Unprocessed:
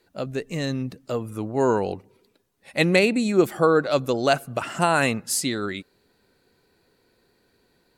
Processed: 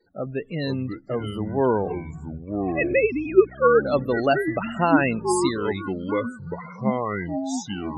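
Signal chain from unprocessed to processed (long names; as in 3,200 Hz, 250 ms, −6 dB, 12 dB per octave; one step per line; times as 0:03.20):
0:01.88–0:03.85: three sine waves on the formant tracks
spectral peaks only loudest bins 32
delay with pitch and tempo change per echo 420 ms, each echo −5 semitones, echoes 3, each echo −6 dB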